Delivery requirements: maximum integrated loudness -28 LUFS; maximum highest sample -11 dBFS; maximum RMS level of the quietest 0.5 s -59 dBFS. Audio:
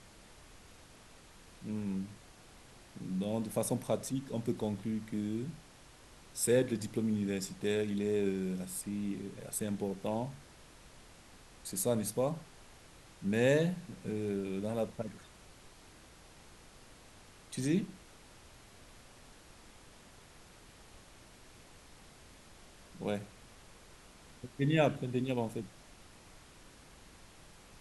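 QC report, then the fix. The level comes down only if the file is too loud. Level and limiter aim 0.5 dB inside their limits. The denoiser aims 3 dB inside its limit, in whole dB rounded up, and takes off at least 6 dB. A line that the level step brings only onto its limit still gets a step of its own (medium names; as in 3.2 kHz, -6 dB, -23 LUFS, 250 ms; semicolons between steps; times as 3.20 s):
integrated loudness -35.0 LUFS: pass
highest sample -15.0 dBFS: pass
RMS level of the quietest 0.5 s -57 dBFS: fail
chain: noise reduction 6 dB, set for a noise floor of -57 dBFS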